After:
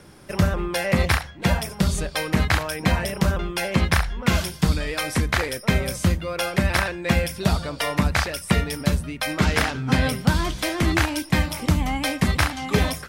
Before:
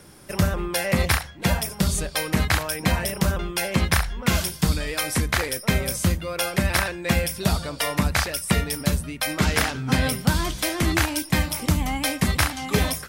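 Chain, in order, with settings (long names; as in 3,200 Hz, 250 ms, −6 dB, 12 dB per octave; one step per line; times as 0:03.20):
high-shelf EQ 6,900 Hz −10 dB
level +1.5 dB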